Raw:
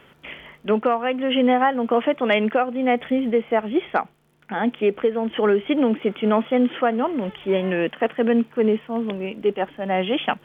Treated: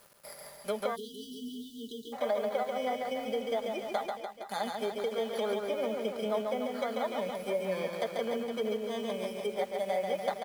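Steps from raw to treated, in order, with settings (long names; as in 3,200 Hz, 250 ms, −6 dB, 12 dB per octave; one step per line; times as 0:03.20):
samples in bit-reversed order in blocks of 16 samples
treble cut that deepens with the level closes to 1,700 Hz, closed at −15 dBFS
low shelf with overshoot 430 Hz −7.5 dB, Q 3
comb filter 5 ms, depth 54%
downward compressor 2.5 to 1, threshold −23 dBFS, peak gain reduction 10 dB
bit reduction 8 bits
reverse bouncing-ball delay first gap 140 ms, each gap 1.1×, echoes 5
time-frequency box erased 0:00.96–0:02.13, 460–2,800 Hz
level −8.5 dB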